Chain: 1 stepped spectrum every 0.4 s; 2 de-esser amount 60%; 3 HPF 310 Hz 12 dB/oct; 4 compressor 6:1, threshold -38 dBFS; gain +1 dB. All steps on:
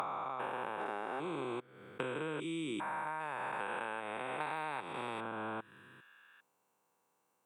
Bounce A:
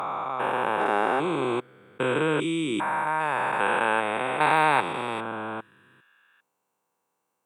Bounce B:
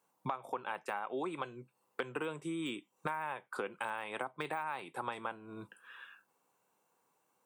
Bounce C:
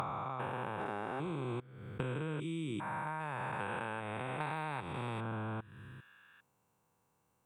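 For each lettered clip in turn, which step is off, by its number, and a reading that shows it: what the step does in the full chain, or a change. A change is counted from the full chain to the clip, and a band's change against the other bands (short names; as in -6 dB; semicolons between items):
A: 4, mean gain reduction 12.5 dB; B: 1, crest factor change +3.0 dB; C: 3, 125 Hz band +13.0 dB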